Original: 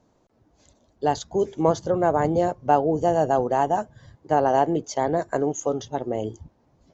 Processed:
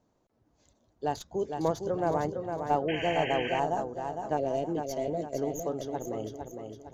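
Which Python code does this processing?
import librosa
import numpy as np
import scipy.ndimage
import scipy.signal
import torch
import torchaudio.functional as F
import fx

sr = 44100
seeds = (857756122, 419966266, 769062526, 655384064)

y = fx.tracing_dist(x, sr, depth_ms=0.037)
y = fx.octave_resonator(y, sr, note='A#', decay_s=0.1, at=(2.29, 2.69), fade=0.02)
y = fx.spec_box(y, sr, start_s=4.37, length_s=1.01, low_hz=700.0, high_hz=1900.0, gain_db=-23)
y = fx.echo_feedback(y, sr, ms=458, feedback_pct=43, wet_db=-6.0)
y = fx.spec_paint(y, sr, seeds[0], shape='noise', start_s=2.88, length_s=0.72, low_hz=1500.0, high_hz=3200.0, level_db=-29.0)
y = y * librosa.db_to_amplitude(-8.5)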